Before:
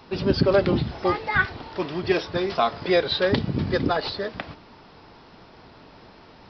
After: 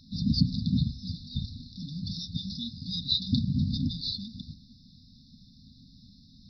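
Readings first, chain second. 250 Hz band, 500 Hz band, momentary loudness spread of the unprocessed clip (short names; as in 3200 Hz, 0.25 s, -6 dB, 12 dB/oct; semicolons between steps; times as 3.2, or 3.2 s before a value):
-4.0 dB, under -40 dB, 11 LU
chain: brick-wall FIR band-stop 270–3500 Hz; notches 60/120/180 Hz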